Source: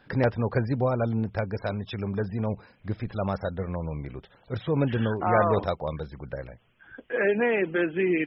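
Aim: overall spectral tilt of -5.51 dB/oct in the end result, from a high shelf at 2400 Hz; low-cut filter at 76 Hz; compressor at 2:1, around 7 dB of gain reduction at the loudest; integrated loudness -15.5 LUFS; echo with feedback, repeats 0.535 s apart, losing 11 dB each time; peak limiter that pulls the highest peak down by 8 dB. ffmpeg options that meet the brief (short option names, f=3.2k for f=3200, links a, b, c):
-af "highpass=76,highshelf=f=2.4k:g=7.5,acompressor=threshold=-29dB:ratio=2,alimiter=limit=-23dB:level=0:latency=1,aecho=1:1:535|1070|1605:0.282|0.0789|0.0221,volume=18.5dB"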